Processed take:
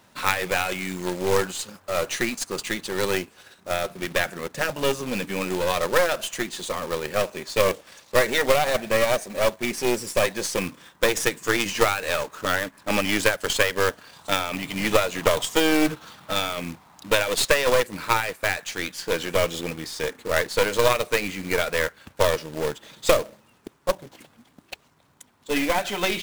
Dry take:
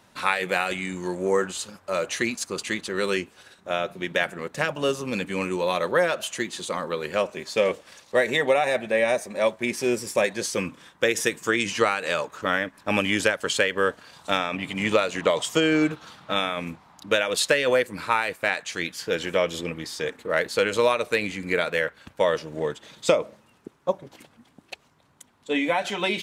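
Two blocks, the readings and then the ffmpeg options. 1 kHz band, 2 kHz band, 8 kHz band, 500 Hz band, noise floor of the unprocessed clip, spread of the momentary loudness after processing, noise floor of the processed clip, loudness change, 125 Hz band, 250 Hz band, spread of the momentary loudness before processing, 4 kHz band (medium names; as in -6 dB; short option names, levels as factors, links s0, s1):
+1.5 dB, +0.5 dB, +3.5 dB, +0.5 dB, -60 dBFS, 9 LU, -59 dBFS, +1.0 dB, +2.5 dB, 0.0 dB, 9 LU, +2.0 dB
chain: -af "aeval=exprs='0.596*(cos(1*acos(clip(val(0)/0.596,-1,1)))-cos(1*PI/2))+0.0119*(cos(5*acos(clip(val(0)/0.596,-1,1)))-cos(5*PI/2))+0.0841*(cos(6*acos(clip(val(0)/0.596,-1,1)))-cos(6*PI/2))+0.00422*(cos(7*acos(clip(val(0)/0.596,-1,1)))-cos(7*PI/2))':c=same,acrusher=bits=2:mode=log:mix=0:aa=0.000001"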